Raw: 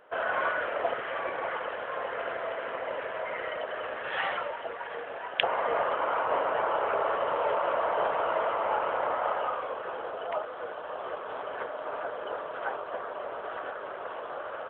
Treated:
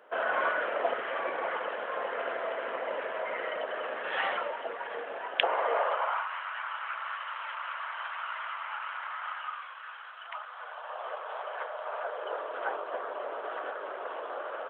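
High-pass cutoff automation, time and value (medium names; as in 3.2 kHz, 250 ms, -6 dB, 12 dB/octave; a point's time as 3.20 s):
high-pass 24 dB/octave
5.20 s 190 Hz
5.99 s 540 Hz
6.30 s 1.3 kHz
10.19 s 1.3 kHz
11.08 s 570 Hz
11.89 s 570 Hz
12.63 s 280 Hz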